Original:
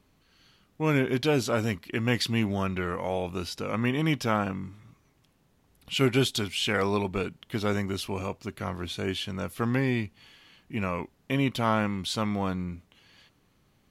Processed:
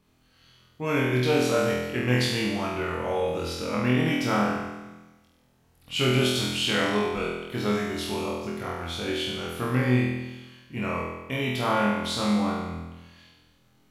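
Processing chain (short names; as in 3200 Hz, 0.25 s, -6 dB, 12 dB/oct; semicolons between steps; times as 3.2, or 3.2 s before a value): flutter echo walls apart 4.1 m, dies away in 1.1 s; gain -3 dB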